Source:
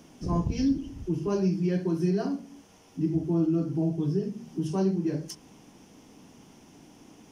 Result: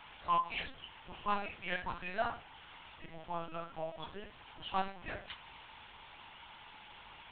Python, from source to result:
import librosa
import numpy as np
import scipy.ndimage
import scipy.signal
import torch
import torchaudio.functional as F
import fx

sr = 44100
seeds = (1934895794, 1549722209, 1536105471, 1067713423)

y = scipy.signal.sosfilt(scipy.signal.butter(4, 840.0, 'highpass', fs=sr, output='sos'), x)
y = np.clip(10.0 ** (35.5 / 20.0) * y, -1.0, 1.0) / 10.0 ** (35.5 / 20.0)
y = fx.lpc_vocoder(y, sr, seeds[0], excitation='pitch_kept', order=10)
y = y * 10.0 ** (9.5 / 20.0)